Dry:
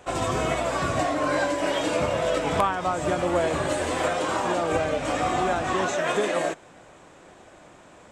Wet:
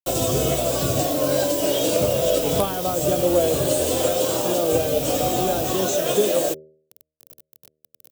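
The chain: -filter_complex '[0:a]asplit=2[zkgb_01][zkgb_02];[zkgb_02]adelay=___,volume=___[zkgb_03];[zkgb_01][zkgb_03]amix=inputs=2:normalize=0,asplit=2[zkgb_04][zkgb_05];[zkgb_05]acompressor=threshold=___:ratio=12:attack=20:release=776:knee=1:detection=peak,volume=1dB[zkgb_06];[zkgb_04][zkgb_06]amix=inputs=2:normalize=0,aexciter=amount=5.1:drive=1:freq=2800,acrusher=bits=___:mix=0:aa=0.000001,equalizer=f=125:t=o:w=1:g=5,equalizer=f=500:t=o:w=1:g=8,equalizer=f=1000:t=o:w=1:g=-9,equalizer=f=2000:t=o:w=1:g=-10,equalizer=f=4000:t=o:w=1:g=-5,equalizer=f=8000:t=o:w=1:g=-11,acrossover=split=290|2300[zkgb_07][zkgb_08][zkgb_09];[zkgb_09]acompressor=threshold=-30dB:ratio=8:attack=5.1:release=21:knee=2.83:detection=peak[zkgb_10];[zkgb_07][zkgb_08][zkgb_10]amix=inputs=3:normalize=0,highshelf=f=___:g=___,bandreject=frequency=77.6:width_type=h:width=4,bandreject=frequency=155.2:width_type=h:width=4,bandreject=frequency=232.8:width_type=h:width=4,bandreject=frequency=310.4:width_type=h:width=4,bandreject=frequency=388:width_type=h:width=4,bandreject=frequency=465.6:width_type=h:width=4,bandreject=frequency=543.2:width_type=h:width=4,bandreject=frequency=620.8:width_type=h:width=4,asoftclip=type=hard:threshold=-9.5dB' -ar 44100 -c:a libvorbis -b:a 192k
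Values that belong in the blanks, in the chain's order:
15, -12dB, -37dB, 4, 3500, 7.5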